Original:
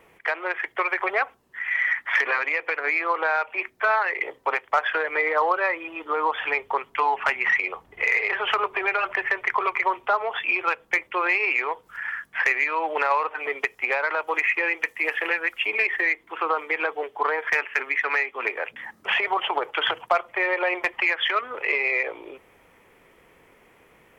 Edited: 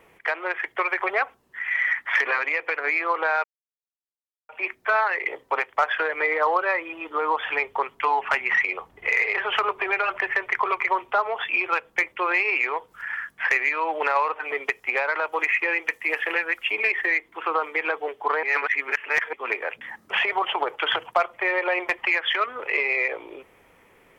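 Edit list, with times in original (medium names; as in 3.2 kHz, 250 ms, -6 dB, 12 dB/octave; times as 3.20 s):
3.44 s: insert silence 1.05 s
17.38–18.28 s: reverse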